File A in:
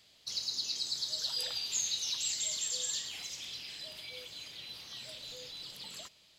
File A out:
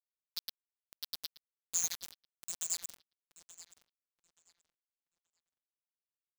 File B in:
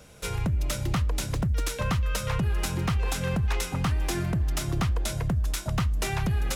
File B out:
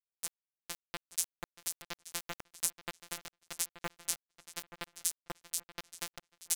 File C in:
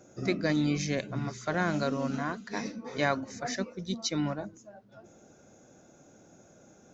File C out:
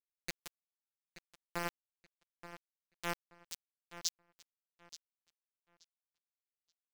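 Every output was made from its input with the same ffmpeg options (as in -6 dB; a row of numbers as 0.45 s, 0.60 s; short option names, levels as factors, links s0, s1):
-filter_complex "[0:a]aemphasis=mode=production:type=50kf,afftfilt=real='re*gte(hypot(re,im),0.0501)':imag='im*gte(hypot(re,im),0.0501)':win_size=1024:overlap=0.75,tiltshelf=f=860:g=-4.5,aecho=1:1:5.7:0.65,acrossover=split=1200[s0][s1];[s0]aeval=exprs='val(0)*(1-0.7/2+0.7/2*cos(2*PI*1.3*n/s))':c=same[s2];[s1]aeval=exprs='val(0)*(1-0.7/2-0.7/2*cos(2*PI*1.3*n/s))':c=same[s3];[s2][s3]amix=inputs=2:normalize=0,afftfilt=real='hypot(re,im)*cos(PI*b)':imag='0':win_size=1024:overlap=0.75,aeval=exprs='val(0)*gte(abs(val(0)),0.0891)':c=same,asplit=2[s4][s5];[s5]adelay=878,lowpass=f=4800:p=1,volume=0.224,asplit=2[s6][s7];[s7]adelay=878,lowpass=f=4800:p=1,volume=0.26,asplit=2[s8][s9];[s9]adelay=878,lowpass=f=4800:p=1,volume=0.26[s10];[s6][s8][s10]amix=inputs=3:normalize=0[s11];[s4][s11]amix=inputs=2:normalize=0,volume=0.562"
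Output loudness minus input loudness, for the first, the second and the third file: -3.0 LU, -11.0 LU, -12.0 LU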